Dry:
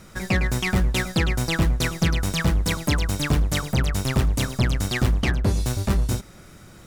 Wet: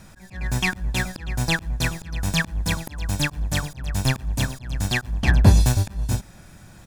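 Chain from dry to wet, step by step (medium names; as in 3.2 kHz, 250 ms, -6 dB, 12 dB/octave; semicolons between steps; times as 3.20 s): comb 1.2 ms, depth 46%; slow attack 365 ms; upward expansion 1.5:1, over -31 dBFS; trim +7 dB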